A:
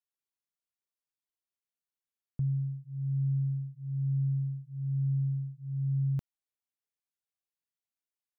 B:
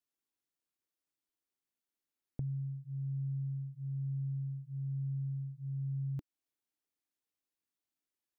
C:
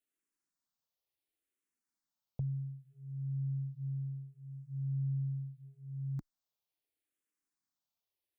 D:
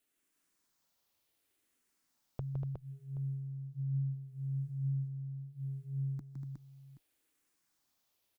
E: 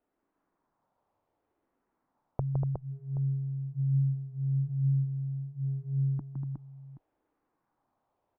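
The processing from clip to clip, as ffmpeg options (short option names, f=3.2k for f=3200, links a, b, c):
-af "equalizer=f=300:t=o:w=0.67:g=10.5,acompressor=threshold=-38dB:ratio=3"
-filter_complex "[0:a]asplit=2[a][b];[b]afreqshift=-0.71[c];[a][c]amix=inputs=2:normalize=1,volume=2.5dB"
-af "acompressor=threshold=-48dB:ratio=6,aecho=1:1:162|240|363|776:0.562|0.473|0.631|0.158,volume=9dB"
-af "lowpass=f=890:t=q:w=1.8,volume=7.5dB"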